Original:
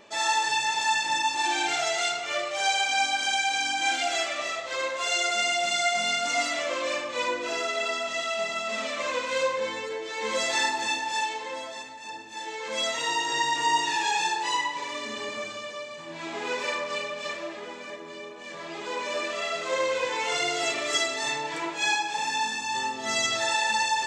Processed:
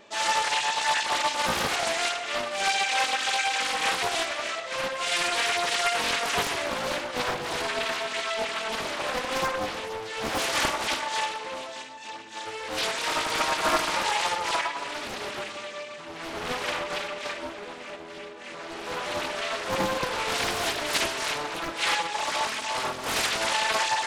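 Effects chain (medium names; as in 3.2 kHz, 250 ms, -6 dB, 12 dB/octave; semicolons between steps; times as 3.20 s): loudspeaker Doppler distortion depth 0.95 ms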